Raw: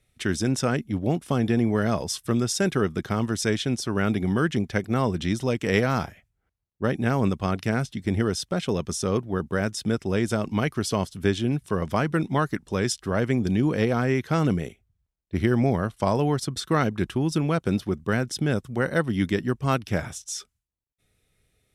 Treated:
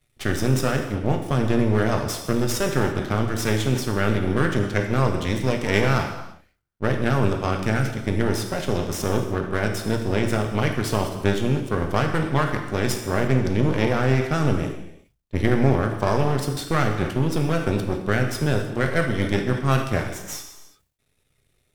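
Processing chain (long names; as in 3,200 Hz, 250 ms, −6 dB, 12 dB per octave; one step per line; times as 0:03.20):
half-wave rectification
reverb whose tail is shaped and stops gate 370 ms falling, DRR 3 dB
level that may fall only so fast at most 130 dB per second
level +3 dB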